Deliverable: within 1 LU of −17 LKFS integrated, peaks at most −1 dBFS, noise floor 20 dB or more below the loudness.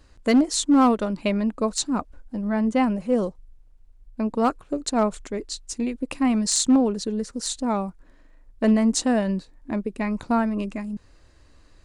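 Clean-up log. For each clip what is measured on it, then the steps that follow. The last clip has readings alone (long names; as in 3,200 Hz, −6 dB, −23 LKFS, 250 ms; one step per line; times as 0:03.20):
share of clipped samples 0.5%; peaks flattened at −12.0 dBFS; integrated loudness −23.5 LKFS; sample peak −12.0 dBFS; target loudness −17.0 LKFS
→ clipped peaks rebuilt −12 dBFS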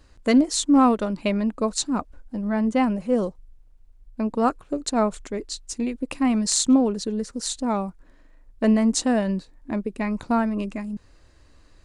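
share of clipped samples 0.0%; integrated loudness −23.5 LKFS; sample peak −6.0 dBFS; target loudness −17.0 LKFS
→ level +6.5 dB
brickwall limiter −1 dBFS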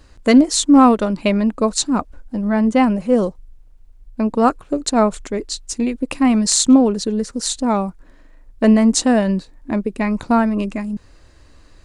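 integrated loudness −17.0 LKFS; sample peak −1.0 dBFS; background noise floor −48 dBFS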